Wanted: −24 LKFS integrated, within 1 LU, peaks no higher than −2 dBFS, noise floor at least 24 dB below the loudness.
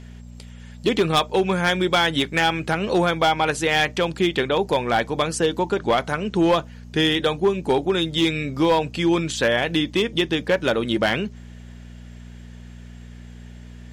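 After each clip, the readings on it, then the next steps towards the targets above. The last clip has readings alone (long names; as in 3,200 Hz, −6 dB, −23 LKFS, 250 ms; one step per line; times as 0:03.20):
share of clipped samples 1.0%; peaks flattened at −12.0 dBFS; mains hum 60 Hz; hum harmonics up to 240 Hz; level of the hum −37 dBFS; integrated loudness −21.0 LKFS; sample peak −12.0 dBFS; target loudness −24.0 LKFS
→ clipped peaks rebuilt −12 dBFS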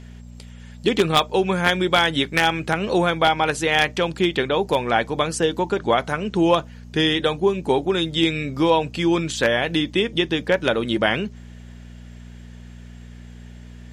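share of clipped samples 0.0%; mains hum 60 Hz; hum harmonics up to 240 Hz; level of the hum −37 dBFS
→ hum removal 60 Hz, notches 4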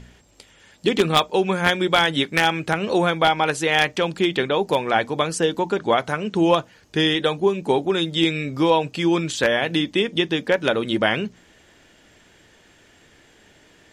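mains hum none found; integrated loudness −20.5 LKFS; sample peak −2.5 dBFS; target loudness −24.0 LKFS
→ level −3.5 dB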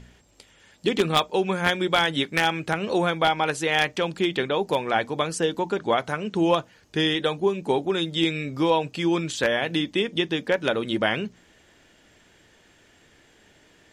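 integrated loudness −24.0 LKFS; sample peak −6.0 dBFS; background noise floor −58 dBFS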